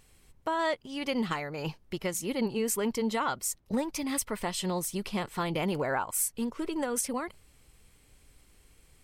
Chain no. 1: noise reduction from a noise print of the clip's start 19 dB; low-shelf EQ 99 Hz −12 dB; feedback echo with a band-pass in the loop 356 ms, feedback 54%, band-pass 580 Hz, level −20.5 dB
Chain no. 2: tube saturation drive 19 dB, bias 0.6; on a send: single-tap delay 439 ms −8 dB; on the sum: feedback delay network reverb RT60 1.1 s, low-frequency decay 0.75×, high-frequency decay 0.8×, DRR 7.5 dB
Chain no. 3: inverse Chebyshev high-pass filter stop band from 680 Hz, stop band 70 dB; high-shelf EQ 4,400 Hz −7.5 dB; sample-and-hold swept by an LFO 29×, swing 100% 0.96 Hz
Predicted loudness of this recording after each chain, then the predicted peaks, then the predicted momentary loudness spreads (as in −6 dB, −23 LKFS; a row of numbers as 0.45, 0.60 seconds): −32.5, −33.5, −46.0 LKFS; −14.0, −16.0, −24.5 dBFS; 6, 6, 13 LU